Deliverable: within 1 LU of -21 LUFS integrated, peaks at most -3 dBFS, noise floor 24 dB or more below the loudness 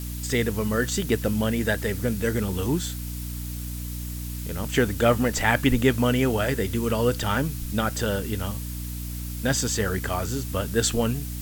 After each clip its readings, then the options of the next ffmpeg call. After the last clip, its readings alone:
hum 60 Hz; highest harmonic 300 Hz; hum level -31 dBFS; noise floor -33 dBFS; noise floor target -50 dBFS; loudness -25.5 LUFS; peak level -5.5 dBFS; loudness target -21.0 LUFS
-> -af "bandreject=f=60:t=h:w=4,bandreject=f=120:t=h:w=4,bandreject=f=180:t=h:w=4,bandreject=f=240:t=h:w=4,bandreject=f=300:t=h:w=4"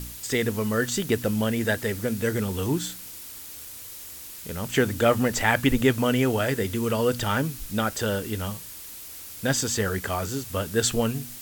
hum not found; noise floor -41 dBFS; noise floor target -50 dBFS
-> -af "afftdn=nr=9:nf=-41"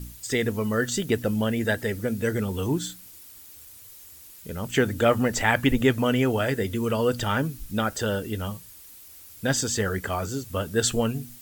noise floor -47 dBFS; noise floor target -50 dBFS
-> -af "afftdn=nr=6:nf=-47"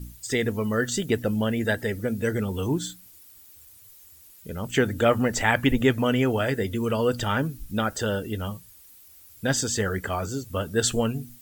noise floor -51 dBFS; loudness -25.5 LUFS; peak level -5.5 dBFS; loudness target -21.0 LUFS
-> -af "volume=1.68,alimiter=limit=0.708:level=0:latency=1"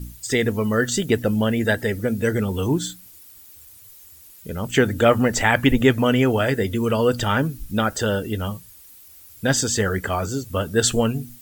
loudness -21.0 LUFS; peak level -3.0 dBFS; noise floor -47 dBFS

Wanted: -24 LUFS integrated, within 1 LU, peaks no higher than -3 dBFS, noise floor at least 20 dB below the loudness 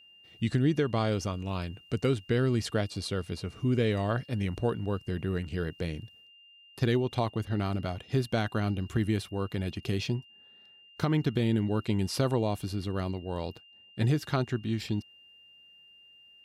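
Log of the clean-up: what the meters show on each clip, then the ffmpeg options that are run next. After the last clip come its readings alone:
steady tone 2.8 kHz; tone level -54 dBFS; loudness -30.5 LUFS; peak level -16.0 dBFS; loudness target -24.0 LUFS
-> -af "bandreject=f=2800:w=30"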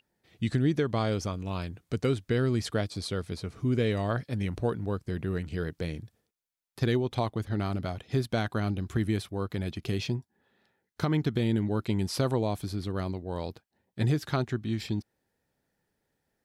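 steady tone not found; loudness -31.0 LUFS; peak level -16.0 dBFS; loudness target -24.0 LUFS
-> -af "volume=2.24"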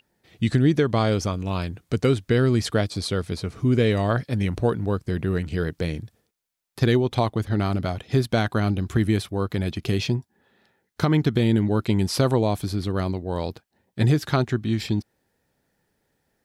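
loudness -24.0 LUFS; peak level -9.0 dBFS; noise floor -73 dBFS

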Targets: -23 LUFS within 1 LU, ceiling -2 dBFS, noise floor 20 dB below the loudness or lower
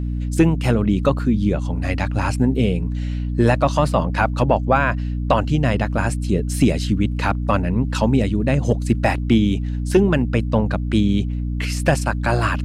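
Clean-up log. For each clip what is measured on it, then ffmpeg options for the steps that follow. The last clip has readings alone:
hum 60 Hz; highest harmonic 300 Hz; hum level -21 dBFS; loudness -19.5 LUFS; peak level -4.0 dBFS; loudness target -23.0 LUFS
-> -af "bandreject=f=60:t=h:w=4,bandreject=f=120:t=h:w=4,bandreject=f=180:t=h:w=4,bandreject=f=240:t=h:w=4,bandreject=f=300:t=h:w=4"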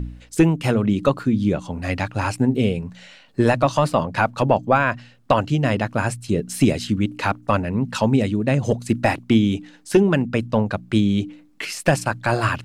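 hum not found; loudness -21.0 LUFS; peak level -5.0 dBFS; loudness target -23.0 LUFS
-> -af "volume=0.794"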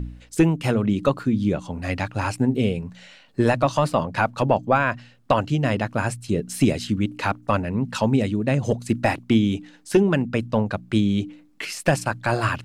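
loudness -23.0 LUFS; peak level -7.0 dBFS; noise floor -53 dBFS

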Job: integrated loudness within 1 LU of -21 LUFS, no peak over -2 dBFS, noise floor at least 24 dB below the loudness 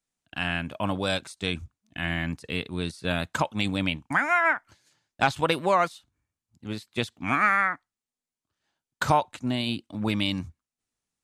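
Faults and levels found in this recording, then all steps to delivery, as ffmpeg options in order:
loudness -27.0 LUFS; peak level -7.0 dBFS; loudness target -21.0 LUFS
-> -af "volume=2,alimiter=limit=0.794:level=0:latency=1"

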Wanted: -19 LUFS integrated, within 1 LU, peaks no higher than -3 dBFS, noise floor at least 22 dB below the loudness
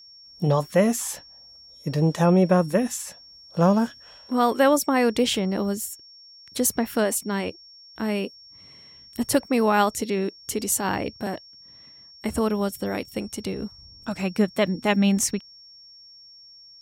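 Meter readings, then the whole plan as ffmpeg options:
steady tone 5.5 kHz; tone level -46 dBFS; loudness -24.0 LUFS; peak level -6.0 dBFS; loudness target -19.0 LUFS
-> -af "bandreject=f=5500:w=30"
-af "volume=1.78,alimiter=limit=0.708:level=0:latency=1"

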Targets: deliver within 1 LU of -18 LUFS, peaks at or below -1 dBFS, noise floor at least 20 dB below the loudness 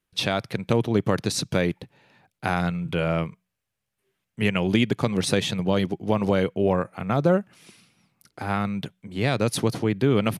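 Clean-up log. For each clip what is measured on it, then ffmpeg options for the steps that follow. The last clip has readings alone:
loudness -24.5 LUFS; peak level -5.5 dBFS; loudness target -18.0 LUFS
-> -af "volume=2.11,alimiter=limit=0.891:level=0:latency=1"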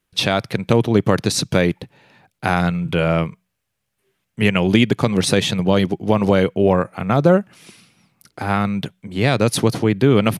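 loudness -18.0 LUFS; peak level -1.0 dBFS; noise floor -76 dBFS

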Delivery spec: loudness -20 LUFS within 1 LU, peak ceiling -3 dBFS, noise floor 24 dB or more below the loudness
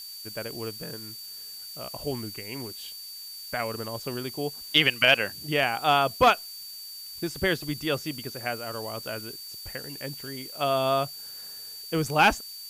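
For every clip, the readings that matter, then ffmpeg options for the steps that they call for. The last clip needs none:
steady tone 4.6 kHz; tone level -40 dBFS; noise floor -41 dBFS; noise floor target -51 dBFS; loudness -27.0 LUFS; peak level -6.5 dBFS; loudness target -20.0 LUFS
-> -af "bandreject=f=4600:w=30"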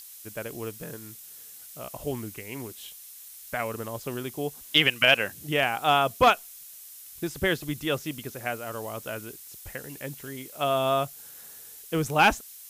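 steady tone not found; noise floor -46 dBFS; noise floor target -51 dBFS
-> -af "afftdn=nr=6:nf=-46"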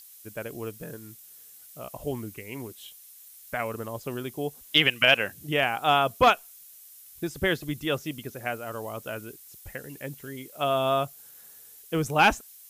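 noise floor -50 dBFS; noise floor target -51 dBFS
-> -af "afftdn=nr=6:nf=-50"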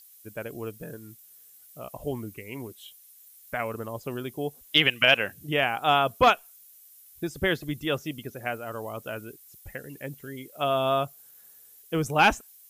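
noise floor -53 dBFS; loudness -26.5 LUFS; peak level -6.0 dBFS; loudness target -20.0 LUFS
-> -af "volume=2.11,alimiter=limit=0.708:level=0:latency=1"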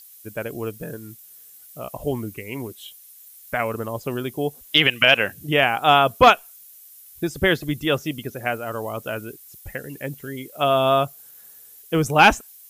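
loudness -20.5 LUFS; peak level -3.0 dBFS; noise floor -47 dBFS

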